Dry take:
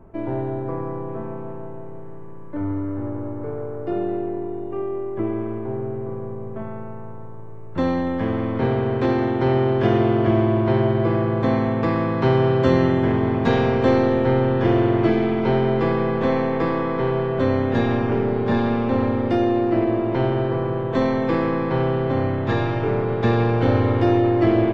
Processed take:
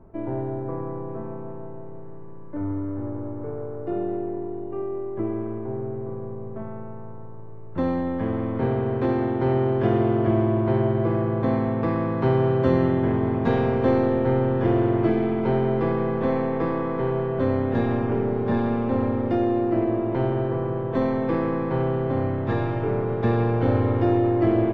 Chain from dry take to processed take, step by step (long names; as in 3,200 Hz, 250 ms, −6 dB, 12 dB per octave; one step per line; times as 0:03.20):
high-shelf EQ 2,500 Hz −11.5 dB
level −2.5 dB